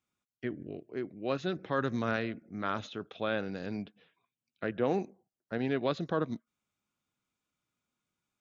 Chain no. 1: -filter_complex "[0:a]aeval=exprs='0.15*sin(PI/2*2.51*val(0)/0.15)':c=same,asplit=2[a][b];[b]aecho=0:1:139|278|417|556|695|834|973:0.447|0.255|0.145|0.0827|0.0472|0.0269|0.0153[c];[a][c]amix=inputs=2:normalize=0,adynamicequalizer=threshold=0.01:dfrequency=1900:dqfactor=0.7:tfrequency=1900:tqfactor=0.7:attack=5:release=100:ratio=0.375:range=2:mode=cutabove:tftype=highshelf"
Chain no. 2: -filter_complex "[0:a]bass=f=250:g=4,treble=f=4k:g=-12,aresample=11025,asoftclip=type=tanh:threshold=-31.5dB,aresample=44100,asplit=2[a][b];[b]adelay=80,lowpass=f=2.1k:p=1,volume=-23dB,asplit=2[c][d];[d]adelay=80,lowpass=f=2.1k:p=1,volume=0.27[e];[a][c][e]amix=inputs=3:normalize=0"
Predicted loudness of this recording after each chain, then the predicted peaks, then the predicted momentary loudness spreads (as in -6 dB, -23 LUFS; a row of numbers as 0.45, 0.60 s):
-25.5, -39.5 LUFS; -13.0, -29.5 dBFS; 11, 8 LU